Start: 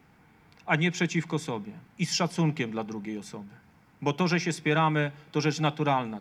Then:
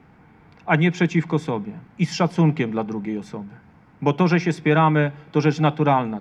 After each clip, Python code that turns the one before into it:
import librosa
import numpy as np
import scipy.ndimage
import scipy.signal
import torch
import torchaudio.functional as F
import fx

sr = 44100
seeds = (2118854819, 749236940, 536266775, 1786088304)

y = fx.lowpass(x, sr, hz=1500.0, slope=6)
y = y * librosa.db_to_amplitude(8.5)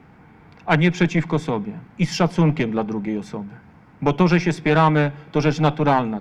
y = fx.diode_clip(x, sr, knee_db=-16.5)
y = y * librosa.db_to_amplitude(3.0)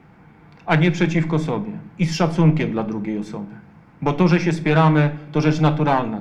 y = fx.room_shoebox(x, sr, seeds[0], volume_m3=590.0, walls='furnished', distance_m=0.77)
y = y * librosa.db_to_amplitude(-1.0)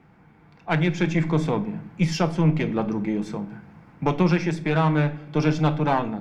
y = fx.rider(x, sr, range_db=3, speed_s=0.5)
y = y * librosa.db_to_amplitude(-3.5)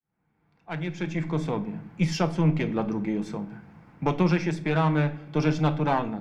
y = fx.fade_in_head(x, sr, length_s=1.93)
y = y * librosa.db_to_amplitude(-2.5)